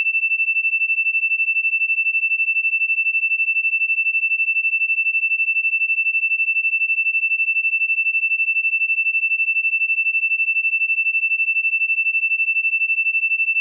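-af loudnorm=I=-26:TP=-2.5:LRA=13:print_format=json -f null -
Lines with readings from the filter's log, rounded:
"input_i" : "-16.2",
"input_tp" : "-13.2",
"input_lra" : "0.0",
"input_thresh" : "-26.2",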